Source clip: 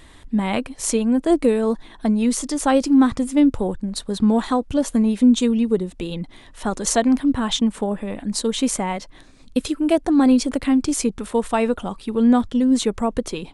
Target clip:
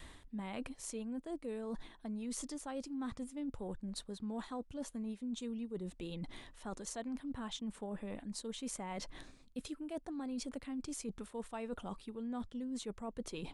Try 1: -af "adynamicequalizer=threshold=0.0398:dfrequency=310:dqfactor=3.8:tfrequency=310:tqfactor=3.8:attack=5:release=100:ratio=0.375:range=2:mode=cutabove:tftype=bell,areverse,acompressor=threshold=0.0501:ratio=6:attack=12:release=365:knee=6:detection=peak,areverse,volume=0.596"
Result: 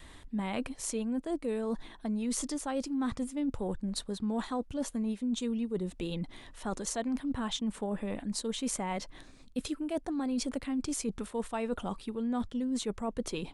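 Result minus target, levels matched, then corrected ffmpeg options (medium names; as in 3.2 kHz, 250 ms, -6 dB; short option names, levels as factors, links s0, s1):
compression: peak gain reduction -8.5 dB
-af "adynamicequalizer=threshold=0.0398:dfrequency=310:dqfactor=3.8:tfrequency=310:tqfactor=3.8:attack=5:release=100:ratio=0.375:range=2:mode=cutabove:tftype=bell,areverse,acompressor=threshold=0.015:ratio=6:attack=12:release=365:knee=6:detection=peak,areverse,volume=0.596"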